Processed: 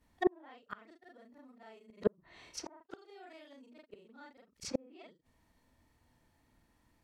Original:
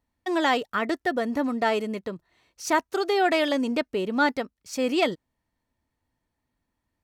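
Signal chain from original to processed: short-time reversal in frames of 0.1 s; flipped gate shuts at -26 dBFS, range -40 dB; treble ducked by the level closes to 880 Hz, closed at -42 dBFS; gain +11.5 dB

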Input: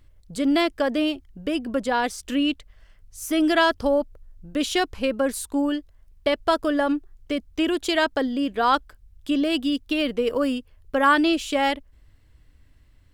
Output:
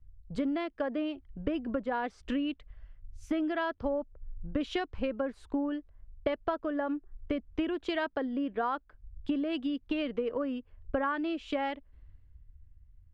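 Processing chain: LPF 2100 Hz 12 dB/oct; compressor 10:1, threshold -32 dBFS, peak gain reduction 18.5 dB; three-band expander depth 70%; gain +3 dB

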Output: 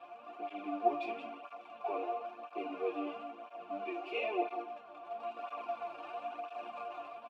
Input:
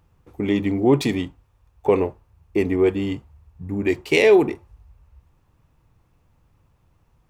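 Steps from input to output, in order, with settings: zero-crossing step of -21.5 dBFS; HPF 110 Hz 6 dB/oct; three-band isolator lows -13 dB, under 180 Hz, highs -14 dB, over 3600 Hz; AGC gain up to 7 dB; vowel filter a; resonator bank A#3 major, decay 0.24 s; on a send: echo 0.18 s -11 dB; on the sum: tape flanging out of phase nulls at 1 Hz, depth 4.9 ms; gain +11.5 dB

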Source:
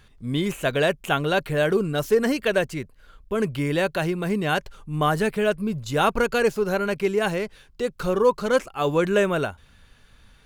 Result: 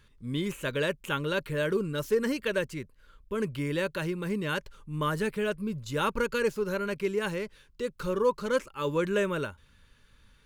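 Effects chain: Butterworth band-stop 720 Hz, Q 3.2; gain -6.5 dB

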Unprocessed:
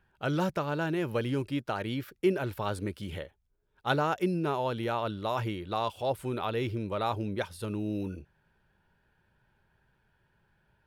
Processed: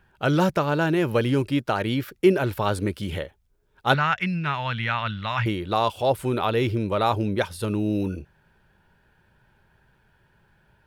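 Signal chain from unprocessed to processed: 3.94–5.46 EQ curve 130 Hz 0 dB, 220 Hz -5 dB, 360 Hz -22 dB, 2000 Hz +9 dB, 14000 Hz -21 dB; gain +8.5 dB

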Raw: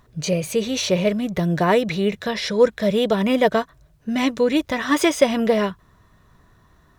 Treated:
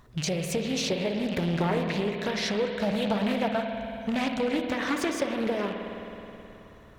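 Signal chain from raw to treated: rattling part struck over -37 dBFS, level -24 dBFS; 2.69–4.49 comb 1.3 ms, depth 97%; compressor 5:1, threshold -27 dBFS, peak gain reduction 16 dB; spring tank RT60 3.3 s, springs 53 ms, chirp 25 ms, DRR 3.5 dB; Doppler distortion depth 0.41 ms

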